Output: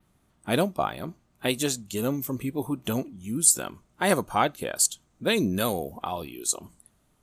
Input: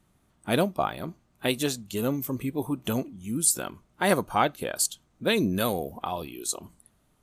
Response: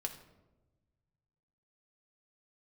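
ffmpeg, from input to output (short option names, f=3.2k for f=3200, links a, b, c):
-af "adynamicequalizer=threshold=0.00631:dfrequency=7400:dqfactor=1.6:tfrequency=7400:tqfactor=1.6:attack=5:release=100:ratio=0.375:range=3:mode=boostabove:tftype=bell"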